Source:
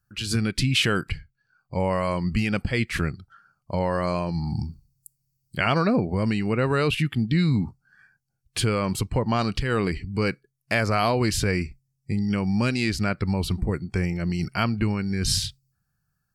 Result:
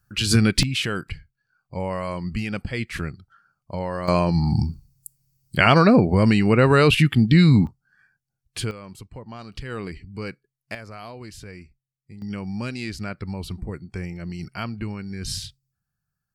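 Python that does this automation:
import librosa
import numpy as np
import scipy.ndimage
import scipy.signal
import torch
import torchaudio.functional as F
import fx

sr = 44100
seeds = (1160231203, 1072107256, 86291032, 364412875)

y = fx.gain(x, sr, db=fx.steps((0.0, 7.0), (0.63, -3.5), (4.08, 7.0), (7.67, -4.0), (8.71, -15.0), (9.53, -8.0), (10.75, -16.5), (12.22, -6.5)))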